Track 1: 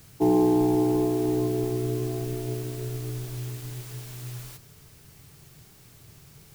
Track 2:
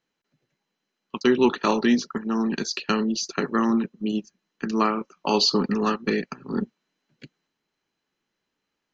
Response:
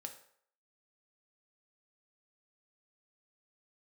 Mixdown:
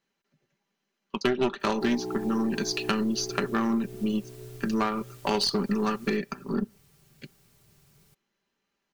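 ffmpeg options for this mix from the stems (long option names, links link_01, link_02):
-filter_complex "[0:a]adelay=1600,volume=-10dB[link_01];[1:a]aeval=exprs='0.447*(cos(1*acos(clip(val(0)/0.447,-1,1)))-cos(1*PI/2))+0.2*(cos(2*acos(clip(val(0)/0.447,-1,1)))-cos(2*PI/2))+0.0282*(cos(8*acos(clip(val(0)/0.447,-1,1)))-cos(8*PI/2))':channel_layout=same,volume=-1dB,asplit=2[link_02][link_03];[link_03]volume=-18dB[link_04];[2:a]atrim=start_sample=2205[link_05];[link_04][link_05]afir=irnorm=-1:irlink=0[link_06];[link_01][link_02][link_06]amix=inputs=3:normalize=0,aecho=1:1:5.1:0.43,acompressor=threshold=-25dB:ratio=2.5"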